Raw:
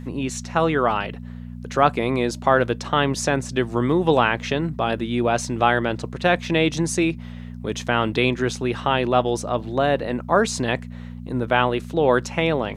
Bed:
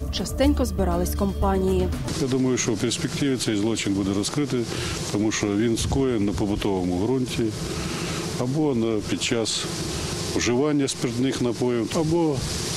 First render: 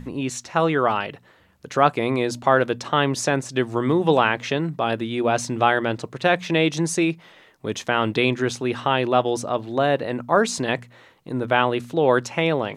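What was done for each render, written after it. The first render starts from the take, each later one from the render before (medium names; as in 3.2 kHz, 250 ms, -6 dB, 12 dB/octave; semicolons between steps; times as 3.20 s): de-hum 60 Hz, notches 4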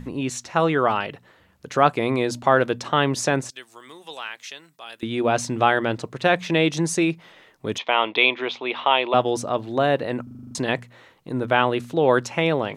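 3.50–5.03 s: differentiator; 7.78–9.14 s: cabinet simulation 450–3900 Hz, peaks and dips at 680 Hz +3 dB, 980 Hz +6 dB, 1.6 kHz -7 dB, 2.3 kHz +8 dB, 3.4 kHz +8 dB; 10.23 s: stutter in place 0.04 s, 8 plays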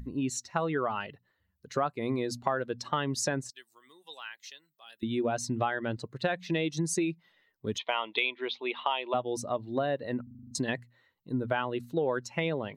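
expander on every frequency bin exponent 1.5; compression 6:1, threshold -26 dBFS, peak gain reduction 13.5 dB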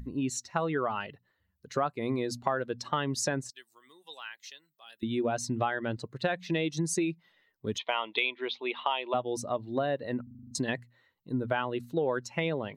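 no audible change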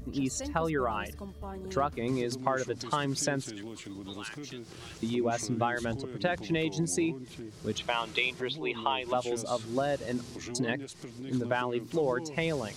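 add bed -19 dB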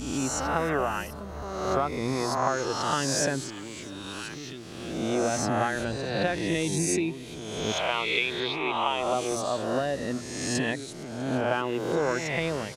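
reverse spectral sustain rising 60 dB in 1.25 s; delay 649 ms -22 dB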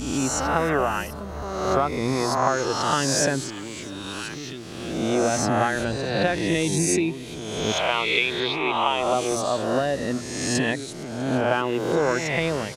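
trim +4.5 dB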